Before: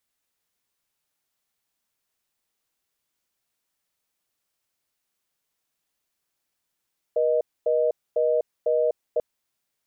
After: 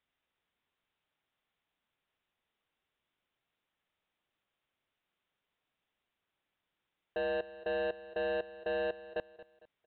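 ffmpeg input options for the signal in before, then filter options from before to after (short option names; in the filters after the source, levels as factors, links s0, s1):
-f lavfi -i "aevalsrc='0.0841*(sin(2*PI*480*t)+sin(2*PI*620*t))*clip(min(mod(t,0.5),0.25-mod(t,0.5))/0.005,0,1)':d=2.04:s=44100"
-af "aresample=8000,asoftclip=type=tanh:threshold=0.0266,aresample=44100,aecho=1:1:227|454|681:0.15|0.0554|0.0205"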